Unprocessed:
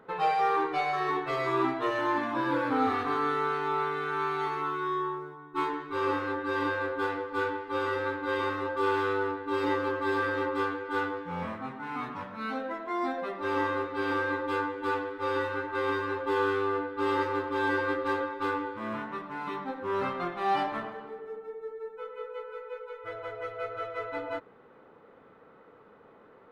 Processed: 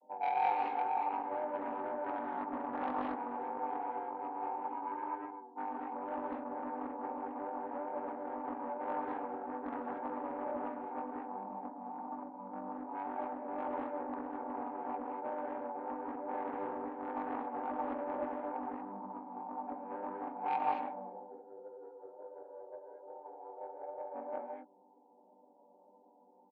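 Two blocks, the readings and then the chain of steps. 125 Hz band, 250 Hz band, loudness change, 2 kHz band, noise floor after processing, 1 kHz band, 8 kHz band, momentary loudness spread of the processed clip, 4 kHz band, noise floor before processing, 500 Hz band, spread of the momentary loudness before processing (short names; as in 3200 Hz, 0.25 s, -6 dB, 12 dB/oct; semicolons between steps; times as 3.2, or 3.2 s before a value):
under -20 dB, -8.5 dB, -8.5 dB, -18.5 dB, -64 dBFS, -6.5 dB, n/a, 12 LU, under -20 dB, -56 dBFS, -10.5 dB, 11 LU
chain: chord vocoder major triad, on G3; wow and flutter 55 cents; rippled Chebyshev low-pass 960 Hz, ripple 3 dB; in parallel at -2 dB: limiter -25 dBFS, peak gain reduction 11 dB; on the sum: steep high-pass 200 Hz 72 dB/oct; soft clip -19 dBFS, distortion -19 dB; differentiator; comb 1.3 ms, depth 52%; non-linear reverb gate 0.26 s rising, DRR 0 dB; Doppler distortion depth 0.31 ms; gain +10.5 dB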